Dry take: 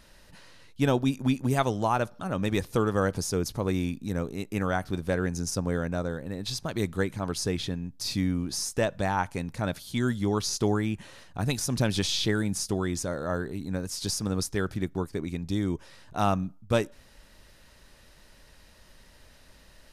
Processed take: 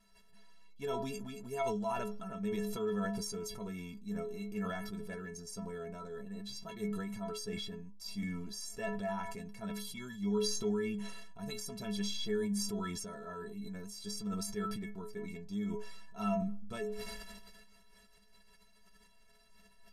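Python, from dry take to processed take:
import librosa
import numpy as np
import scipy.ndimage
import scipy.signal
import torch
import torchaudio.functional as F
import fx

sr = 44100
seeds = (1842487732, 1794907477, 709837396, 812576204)

y = fx.stiff_resonator(x, sr, f0_hz=200.0, decay_s=0.34, stiffness=0.03)
y = fx.sustainer(y, sr, db_per_s=27.0)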